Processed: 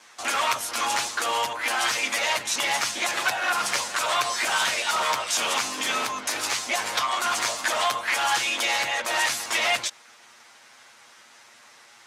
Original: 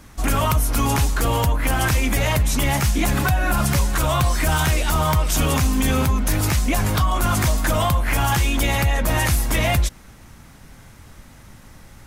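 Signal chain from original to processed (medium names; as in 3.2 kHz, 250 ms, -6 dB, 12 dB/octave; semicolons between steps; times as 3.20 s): comb filter that takes the minimum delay 8.5 ms; band-pass 720–5800 Hz; treble shelf 3.8 kHz +7.5 dB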